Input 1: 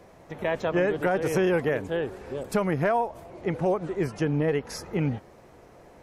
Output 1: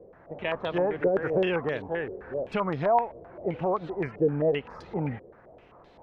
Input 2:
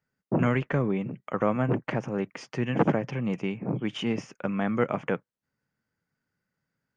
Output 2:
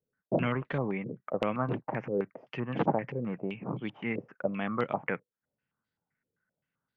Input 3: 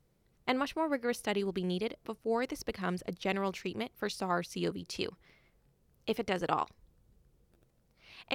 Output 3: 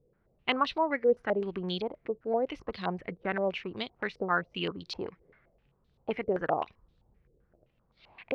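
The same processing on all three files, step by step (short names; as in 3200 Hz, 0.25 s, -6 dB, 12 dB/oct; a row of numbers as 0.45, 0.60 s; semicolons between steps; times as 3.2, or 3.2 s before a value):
stepped low-pass 7.7 Hz 470–3800 Hz; normalise peaks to -12 dBFS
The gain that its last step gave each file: -5.0, -6.5, -1.5 dB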